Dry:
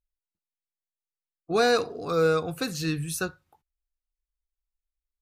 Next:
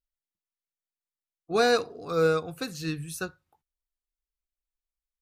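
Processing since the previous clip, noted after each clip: upward expander 1.5:1, over -31 dBFS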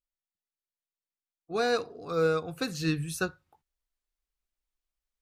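vocal rider within 5 dB 0.5 s; high shelf 8100 Hz -6 dB; gain -1.5 dB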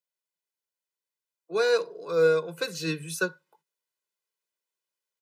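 steep high-pass 160 Hz 72 dB/oct; comb 2 ms, depth 88%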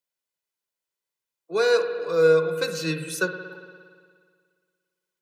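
spring tank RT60 1.9 s, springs 56 ms, chirp 50 ms, DRR 7.5 dB; gain +2.5 dB

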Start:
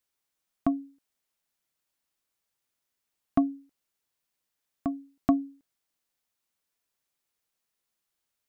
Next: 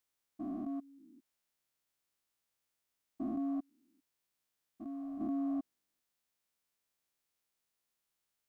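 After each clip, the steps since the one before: stepped spectrum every 0.4 s; gain -1 dB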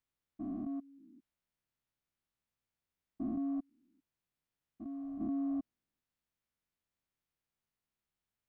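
tone controls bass +10 dB, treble -8 dB; gain -4 dB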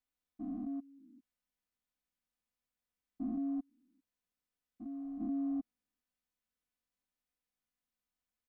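comb 4 ms, depth 82%; gain -5 dB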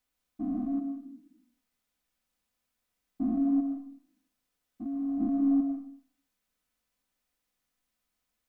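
reverb RT60 0.55 s, pre-delay 90 ms, DRR 5 dB; gain +8.5 dB

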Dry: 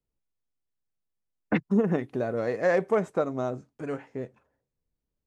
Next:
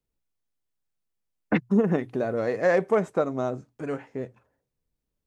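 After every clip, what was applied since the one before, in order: notches 60/120 Hz; gain +2 dB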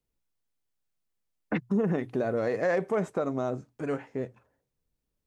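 limiter -18.5 dBFS, peak gain reduction 7.5 dB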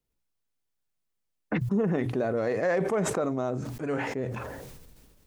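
sustainer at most 31 dB/s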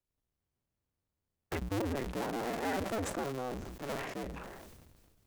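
cycle switcher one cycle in 2, inverted; gain -8.5 dB

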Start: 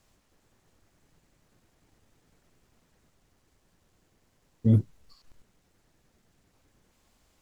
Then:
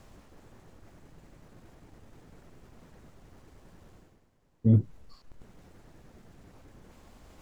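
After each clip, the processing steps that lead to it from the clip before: high shelf 2000 Hz -11 dB; reverse; upward compressor, threshold -39 dBFS; reverse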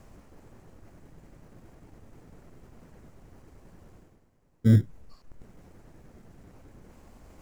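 bell 3600 Hz -6.5 dB 0.87 oct; in parallel at -10 dB: sample-and-hold 25×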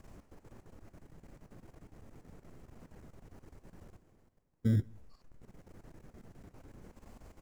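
level quantiser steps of 13 dB; outdoor echo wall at 30 m, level -29 dB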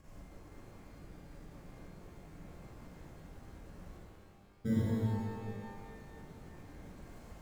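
shimmer reverb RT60 2.1 s, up +12 st, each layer -8 dB, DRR -7 dB; gain -5 dB

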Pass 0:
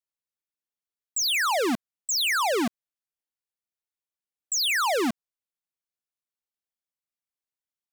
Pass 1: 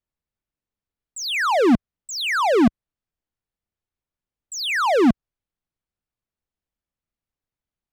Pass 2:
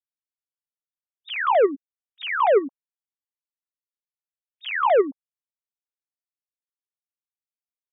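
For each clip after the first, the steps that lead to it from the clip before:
RIAA curve playback; gain +5 dB
sine-wave speech; gain -2.5 dB

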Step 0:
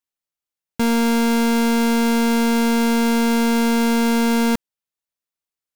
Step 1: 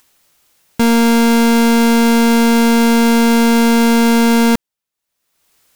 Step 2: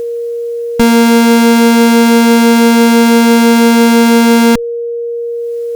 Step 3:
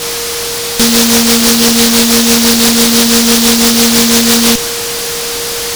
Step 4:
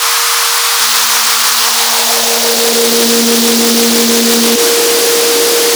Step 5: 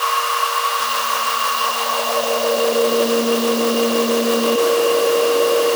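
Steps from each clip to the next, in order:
upward compressor, threshold -42 dBFS; gain +6.5 dB
compressor, threshold -15 dBFS, peak gain reduction 3.5 dB; one-sided clip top -17 dBFS; whine 470 Hz -24 dBFS; gain +9 dB
dynamic EQ 540 Hz, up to +7 dB, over -25 dBFS; noise-modulated delay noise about 4700 Hz, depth 0.44 ms; gain -3 dB
high-pass sweep 1100 Hz -> 330 Hz, 1.55–3.2; in parallel at -9.5 dB: soft clip -4.5 dBFS, distortion -14 dB; on the sum: limiter -4.5 dBFS, peak gain reduction 9.5 dB; gain +3.5 dB
bell 7800 Hz -8.5 dB 2.8 oct; small resonant body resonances 570/1100/2800 Hz, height 16 dB, ringing for 40 ms; gain -9 dB

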